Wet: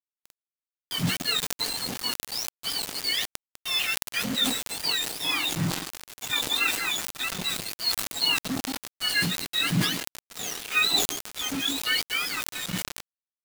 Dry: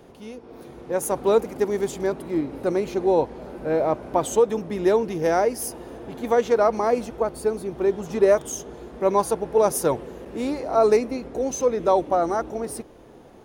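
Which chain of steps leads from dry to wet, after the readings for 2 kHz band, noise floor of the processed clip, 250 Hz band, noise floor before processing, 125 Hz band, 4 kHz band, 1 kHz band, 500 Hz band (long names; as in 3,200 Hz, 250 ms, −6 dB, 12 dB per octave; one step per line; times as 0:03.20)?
+9.0 dB, below −85 dBFS, −7.0 dB, −47 dBFS, +2.0 dB, +19.0 dB, −11.5 dB, −23.5 dB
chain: frequency axis turned over on the octave scale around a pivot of 1,300 Hz
low-shelf EQ 220 Hz −8.5 dB
tuned comb filter 180 Hz, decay 0.75 s, harmonics odd, mix 50%
echo through a band-pass that steps 166 ms, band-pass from 350 Hz, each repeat 0.7 octaves, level −2.5 dB
bit reduction 6 bits
level that may fall only so fast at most 61 dB per second
level +3.5 dB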